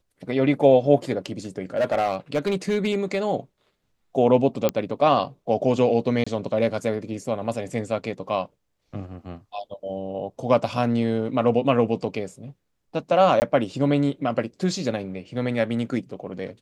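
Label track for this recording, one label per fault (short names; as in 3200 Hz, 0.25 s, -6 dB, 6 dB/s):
1.770000	3.180000	clipped -17 dBFS
4.690000	4.690000	pop -7 dBFS
6.240000	6.260000	gap 25 ms
13.400000	13.420000	gap 19 ms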